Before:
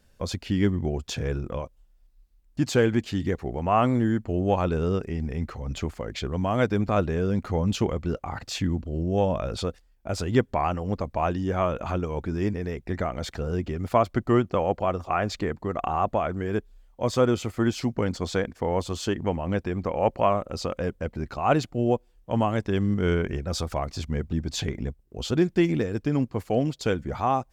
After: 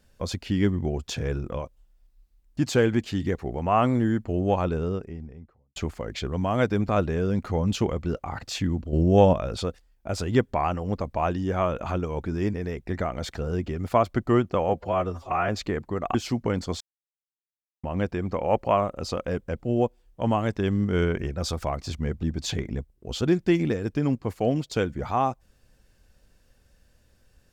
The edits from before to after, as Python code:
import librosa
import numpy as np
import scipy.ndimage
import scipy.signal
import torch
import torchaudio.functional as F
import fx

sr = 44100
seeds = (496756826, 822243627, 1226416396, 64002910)

y = fx.studio_fade_out(x, sr, start_s=4.42, length_s=1.34)
y = fx.edit(y, sr, fx.clip_gain(start_s=8.93, length_s=0.4, db=6.5),
    fx.stretch_span(start_s=14.69, length_s=0.53, factor=1.5),
    fx.cut(start_s=15.88, length_s=1.79),
    fx.silence(start_s=18.33, length_s=1.03),
    fx.cut(start_s=21.12, length_s=0.57), tone=tone)